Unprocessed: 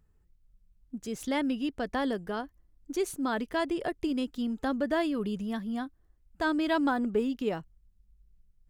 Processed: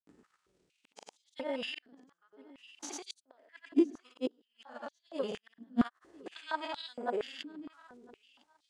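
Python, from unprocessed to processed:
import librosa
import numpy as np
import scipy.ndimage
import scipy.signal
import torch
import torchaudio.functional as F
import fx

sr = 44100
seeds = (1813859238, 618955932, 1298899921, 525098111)

p1 = fx.spec_steps(x, sr, hold_ms=100)
p2 = scipy.signal.sosfilt(scipy.signal.butter(4, 8900.0, 'lowpass', fs=sr, output='sos'), p1)
p3 = fx.transient(p2, sr, attack_db=5, sustain_db=9)
p4 = fx.over_compress(p3, sr, threshold_db=-36.0, ratio=-1.0)
p5 = fx.gate_flip(p4, sr, shuts_db=-28.0, range_db=-41)
p6 = fx.granulator(p5, sr, seeds[0], grain_ms=100.0, per_s=20.0, spray_ms=100.0, spread_st=0)
p7 = p6 + fx.echo_feedback(p6, sr, ms=1006, feedback_pct=21, wet_db=-23.0, dry=0)
p8 = fx.filter_held_highpass(p7, sr, hz=4.3, low_hz=270.0, high_hz=3900.0)
y = p8 * librosa.db_to_amplitude(8.5)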